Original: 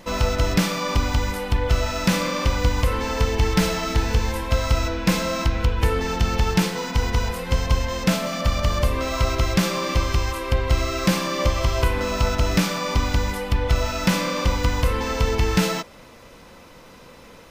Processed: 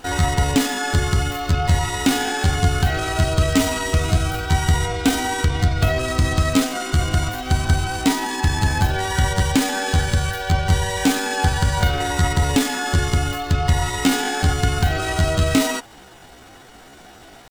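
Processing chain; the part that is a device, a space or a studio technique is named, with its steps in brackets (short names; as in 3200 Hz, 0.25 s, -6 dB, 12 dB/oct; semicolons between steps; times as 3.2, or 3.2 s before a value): chipmunk voice (pitch shift +6.5 st); gain +2 dB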